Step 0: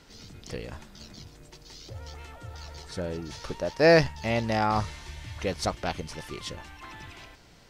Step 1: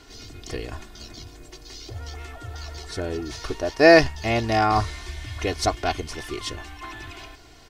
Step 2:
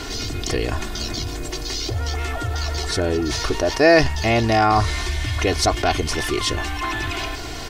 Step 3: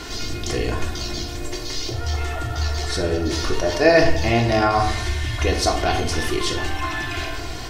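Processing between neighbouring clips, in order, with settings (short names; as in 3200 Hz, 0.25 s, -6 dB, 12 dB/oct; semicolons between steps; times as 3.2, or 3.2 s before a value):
comb 2.8 ms, depth 70%; gain +4 dB
fast leveller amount 50%; gain -1 dB
reverb RT60 0.80 s, pre-delay 6 ms, DRR 1.5 dB; gain -3.5 dB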